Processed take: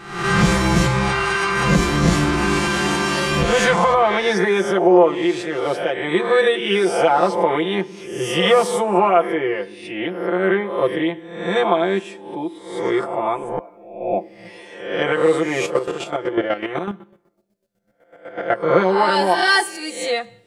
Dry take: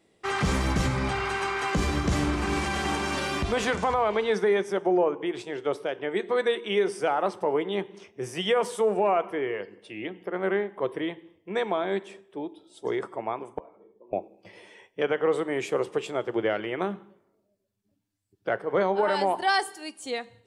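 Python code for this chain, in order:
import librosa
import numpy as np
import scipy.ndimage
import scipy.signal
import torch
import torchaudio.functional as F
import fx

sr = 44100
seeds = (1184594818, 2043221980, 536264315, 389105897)

y = fx.spec_swells(x, sr, rise_s=0.72)
y = y + 0.99 * np.pad(y, (int(5.8 * sr / 1000.0), 0))[:len(y)]
y = fx.chopper(y, sr, hz=8.0, depth_pct=65, duty_pct=30, at=(15.65, 18.63), fade=0.02)
y = y * 10.0 ** (4.5 / 20.0)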